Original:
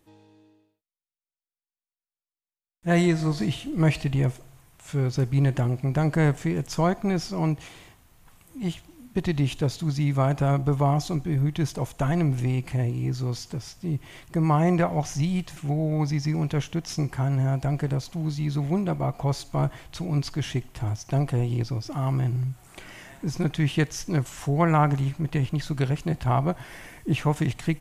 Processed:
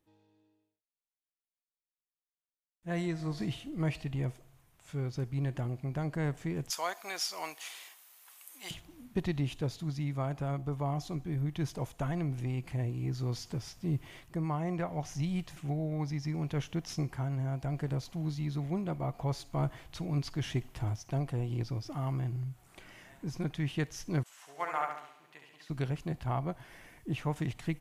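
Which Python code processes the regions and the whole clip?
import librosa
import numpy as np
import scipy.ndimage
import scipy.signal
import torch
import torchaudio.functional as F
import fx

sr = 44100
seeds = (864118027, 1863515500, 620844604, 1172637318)

y = fx.chain(x, sr, fx.highpass(hz=620.0, slope=12),
    fx.tilt_eq(slope=3.5), at=(6.7, 8.71))
y = fx.chain(y, sr, fx.highpass(hz=820.0, slope=12),
    fx.room_flutter(wall_m=11.8, rt60_s=1.0),
    fx.upward_expand(threshold_db=-39.0, expansion=1.5), at=(24.23, 25.7))
y = fx.peak_eq(y, sr, hz=7800.0, db=-3.0, octaves=0.77)
y = fx.rider(y, sr, range_db=5, speed_s=0.5)
y = y * librosa.db_to_amplitude(-9.0)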